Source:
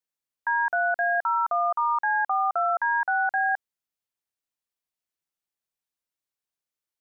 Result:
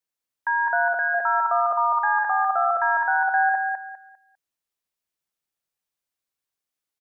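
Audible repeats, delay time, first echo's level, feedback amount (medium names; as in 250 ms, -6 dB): 3, 200 ms, -4.0 dB, 26%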